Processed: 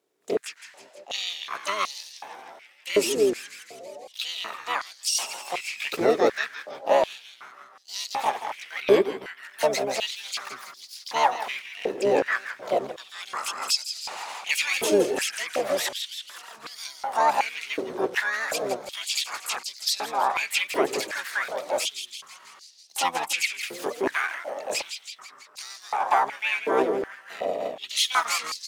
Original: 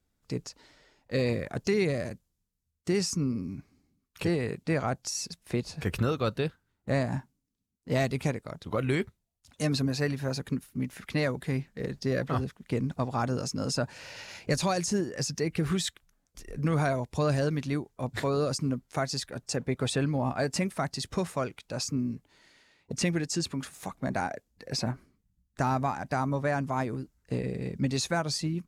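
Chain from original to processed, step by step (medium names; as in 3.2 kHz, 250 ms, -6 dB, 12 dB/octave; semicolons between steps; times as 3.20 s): frequency-shifting echo 164 ms, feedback 64%, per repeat -130 Hz, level -10 dB; harmony voices -12 st 0 dB, +7 st -1 dB; step-sequenced high-pass 2.7 Hz 420–4700 Hz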